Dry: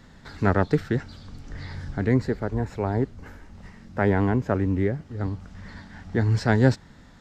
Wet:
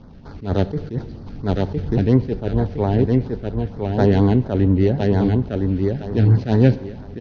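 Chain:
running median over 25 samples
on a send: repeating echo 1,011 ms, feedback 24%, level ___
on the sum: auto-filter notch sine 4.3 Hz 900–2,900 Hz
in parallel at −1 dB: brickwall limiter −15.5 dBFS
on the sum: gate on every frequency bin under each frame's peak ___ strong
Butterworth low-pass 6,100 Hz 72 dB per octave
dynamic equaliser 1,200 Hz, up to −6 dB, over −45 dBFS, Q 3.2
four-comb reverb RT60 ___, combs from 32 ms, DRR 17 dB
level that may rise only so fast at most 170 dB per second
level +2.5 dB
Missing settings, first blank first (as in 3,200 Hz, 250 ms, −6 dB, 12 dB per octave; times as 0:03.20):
−4 dB, −55 dB, 1.3 s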